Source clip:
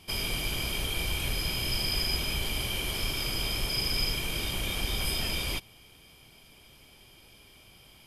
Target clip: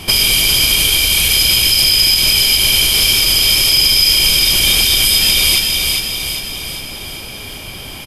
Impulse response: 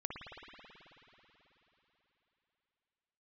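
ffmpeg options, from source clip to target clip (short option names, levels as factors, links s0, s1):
-filter_complex "[0:a]acrossover=split=2600[s0][s1];[s0]acompressor=threshold=0.00562:ratio=6[s2];[s2][s1]amix=inputs=2:normalize=0,aecho=1:1:403|806|1209|1612|2015|2418|2821:0.531|0.292|0.161|0.0883|0.0486|0.0267|0.0147,alimiter=level_in=17.8:limit=0.891:release=50:level=0:latency=1,volume=0.891"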